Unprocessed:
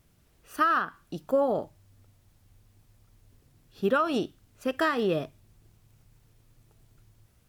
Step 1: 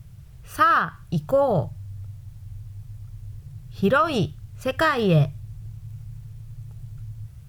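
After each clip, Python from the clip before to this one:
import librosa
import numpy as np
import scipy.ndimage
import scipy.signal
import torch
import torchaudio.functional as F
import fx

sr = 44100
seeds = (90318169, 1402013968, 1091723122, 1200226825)

y = fx.low_shelf_res(x, sr, hz=180.0, db=12.0, q=3.0)
y = y * librosa.db_to_amplitude(6.5)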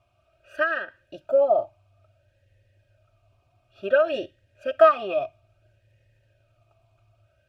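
y = x + 0.98 * np.pad(x, (int(3.2 * sr / 1000.0), 0))[:len(x)]
y = fx.vowel_sweep(y, sr, vowels='a-e', hz=0.58)
y = y * librosa.db_to_amplitude(5.5)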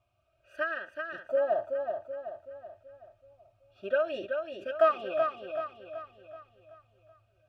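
y = fx.echo_feedback(x, sr, ms=379, feedback_pct=47, wet_db=-5.5)
y = y * librosa.db_to_amplitude(-8.0)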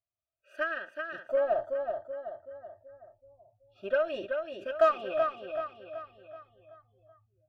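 y = fx.noise_reduce_blind(x, sr, reduce_db=25)
y = fx.cheby_harmonics(y, sr, harmonics=(8,), levels_db=(-37,), full_scale_db=-12.5)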